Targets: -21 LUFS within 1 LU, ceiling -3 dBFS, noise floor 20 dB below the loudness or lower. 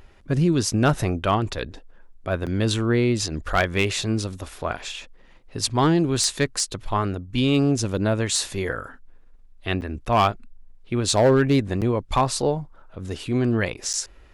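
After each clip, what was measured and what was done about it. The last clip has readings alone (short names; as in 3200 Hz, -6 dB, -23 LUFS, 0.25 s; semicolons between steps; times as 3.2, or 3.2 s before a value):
clipped 0.3%; flat tops at -11.0 dBFS; dropouts 4; longest dropout 7.7 ms; loudness -23.0 LUFS; peak -11.0 dBFS; loudness target -21.0 LUFS
-> clip repair -11 dBFS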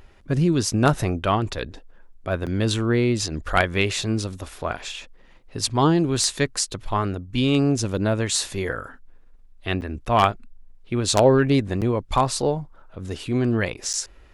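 clipped 0.0%; dropouts 4; longest dropout 7.7 ms
-> interpolate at 2.46/9.81/11.81/13.93, 7.7 ms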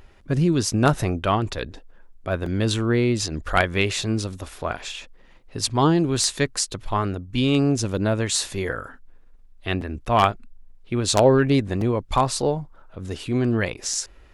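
dropouts 0; loudness -23.0 LUFS; peak -2.0 dBFS; loudness target -21.0 LUFS
-> gain +2 dB; limiter -3 dBFS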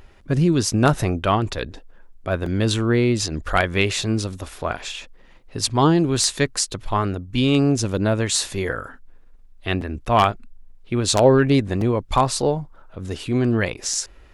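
loudness -21.0 LUFS; peak -3.0 dBFS; noise floor -48 dBFS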